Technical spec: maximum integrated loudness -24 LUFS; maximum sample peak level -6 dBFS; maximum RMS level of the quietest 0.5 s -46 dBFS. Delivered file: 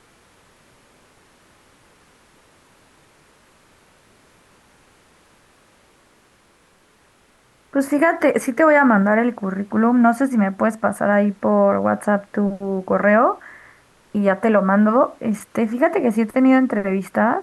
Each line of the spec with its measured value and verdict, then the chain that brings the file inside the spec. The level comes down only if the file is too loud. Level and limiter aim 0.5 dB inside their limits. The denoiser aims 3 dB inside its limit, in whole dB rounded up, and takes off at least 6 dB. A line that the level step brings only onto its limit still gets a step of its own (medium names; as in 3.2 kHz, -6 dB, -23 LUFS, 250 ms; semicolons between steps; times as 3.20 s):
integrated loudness -18.0 LUFS: fail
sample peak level -5.0 dBFS: fail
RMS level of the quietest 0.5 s -56 dBFS: pass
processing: trim -6.5 dB